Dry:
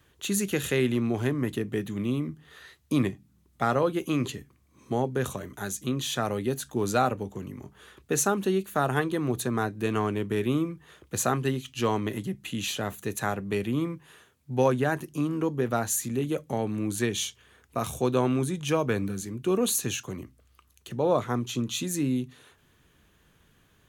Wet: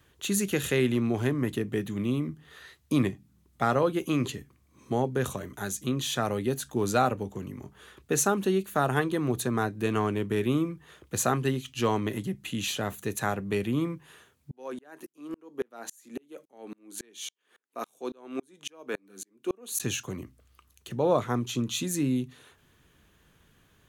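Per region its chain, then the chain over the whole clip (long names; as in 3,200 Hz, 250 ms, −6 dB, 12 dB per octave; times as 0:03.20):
0:14.51–0:19.80: high-pass filter 260 Hz 24 dB per octave + tremolo with a ramp in dB swelling 3.6 Hz, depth 38 dB
whole clip: no processing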